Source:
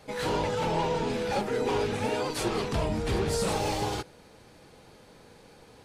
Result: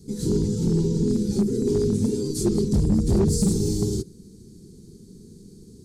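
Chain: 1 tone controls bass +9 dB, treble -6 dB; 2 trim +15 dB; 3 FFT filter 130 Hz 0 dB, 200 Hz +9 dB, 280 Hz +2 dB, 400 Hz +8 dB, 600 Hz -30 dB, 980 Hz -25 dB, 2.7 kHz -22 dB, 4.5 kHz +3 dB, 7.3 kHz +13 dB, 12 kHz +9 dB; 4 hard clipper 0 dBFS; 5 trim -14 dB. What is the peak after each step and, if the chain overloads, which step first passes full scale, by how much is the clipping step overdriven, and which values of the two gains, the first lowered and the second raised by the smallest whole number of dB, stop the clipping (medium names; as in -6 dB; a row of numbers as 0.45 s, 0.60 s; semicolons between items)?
-12.0 dBFS, +3.0 dBFS, +6.5 dBFS, 0.0 dBFS, -14.0 dBFS; step 2, 6.5 dB; step 2 +8 dB, step 5 -7 dB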